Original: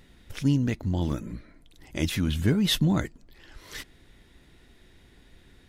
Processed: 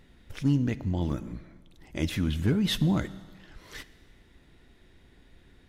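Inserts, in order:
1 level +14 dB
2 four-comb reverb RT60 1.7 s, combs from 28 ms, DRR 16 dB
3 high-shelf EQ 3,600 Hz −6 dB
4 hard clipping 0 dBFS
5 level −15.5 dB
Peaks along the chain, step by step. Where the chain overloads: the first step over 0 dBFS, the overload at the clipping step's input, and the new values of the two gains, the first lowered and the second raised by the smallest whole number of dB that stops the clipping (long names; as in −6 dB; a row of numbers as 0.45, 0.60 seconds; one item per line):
+4.0, +4.5, +4.0, 0.0, −15.5 dBFS
step 1, 4.0 dB
step 1 +10 dB, step 5 −11.5 dB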